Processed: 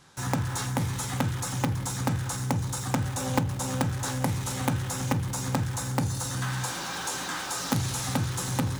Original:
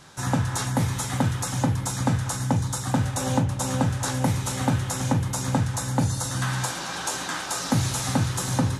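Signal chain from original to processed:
in parallel at −7 dB: log-companded quantiser 2 bits
on the sum: notch filter 640 Hz, Q 12
level −7 dB

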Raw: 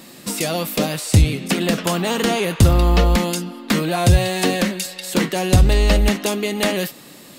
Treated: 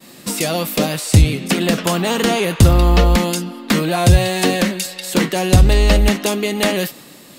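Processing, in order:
downward expander −39 dBFS
level +2.5 dB

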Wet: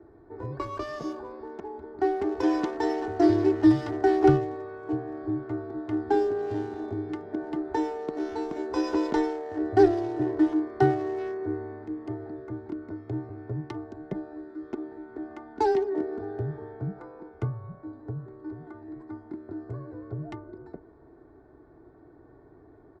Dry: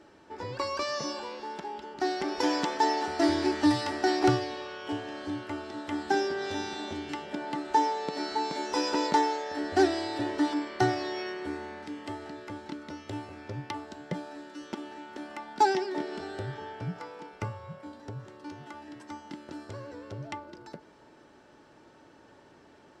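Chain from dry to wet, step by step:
adaptive Wiener filter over 15 samples
spectral tilt −3 dB per octave
comb filter 2.8 ms, depth 59%
frequency shifter +16 Hz
level −2.5 dB

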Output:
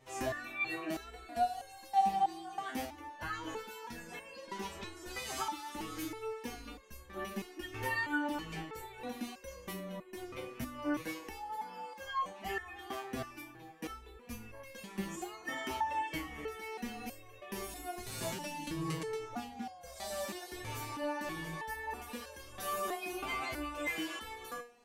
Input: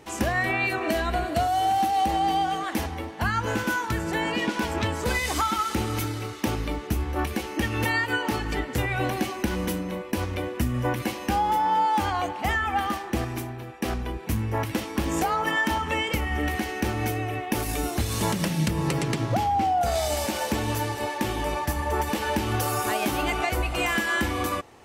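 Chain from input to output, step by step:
flanger 0.63 Hz, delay 1.6 ms, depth 4.5 ms, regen +32%
step-sequenced resonator 3.1 Hz 130–540 Hz
level +4 dB

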